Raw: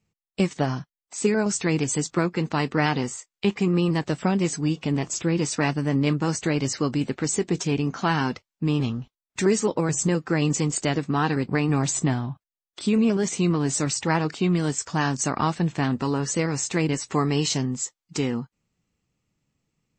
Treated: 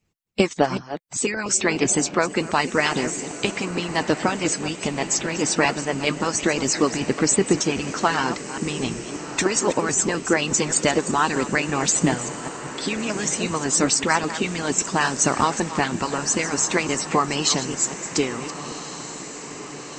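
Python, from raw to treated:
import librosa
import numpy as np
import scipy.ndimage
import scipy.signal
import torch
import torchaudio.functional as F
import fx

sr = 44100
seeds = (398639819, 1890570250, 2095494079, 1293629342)

y = fx.reverse_delay(x, sr, ms=195, wet_db=-11.5)
y = fx.hpss(y, sr, part='harmonic', gain_db=-18)
y = fx.echo_diffused(y, sr, ms=1415, feedback_pct=63, wet_db=-13)
y = F.gain(torch.from_numpy(y), 8.0).numpy()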